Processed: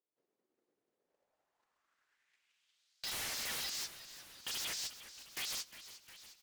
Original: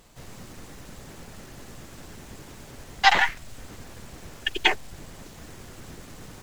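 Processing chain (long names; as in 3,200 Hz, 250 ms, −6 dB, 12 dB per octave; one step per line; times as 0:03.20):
delay that plays each chunk backwards 561 ms, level −5 dB
high-pass filter 230 Hz 12 dB per octave
noise gate −38 dBFS, range −55 dB
high-shelf EQ 2,700 Hz +8.5 dB
downward compressor 5 to 1, threshold −23 dBFS, peak gain reduction 13 dB
band-pass filter sweep 380 Hz → 4,900 Hz, 0:00.87–0:03.06
transient designer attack +7 dB, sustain 0 dB
soft clipping −38 dBFS, distortion 0 dB
brickwall limiter −42 dBFS, peak gain reduction 4 dB
sine wavefolder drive 10 dB, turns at −42 dBFS
echo with shifted repeats 356 ms, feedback 62%, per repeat −120 Hz, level −14 dB
one half of a high-frequency compander encoder only
level +5 dB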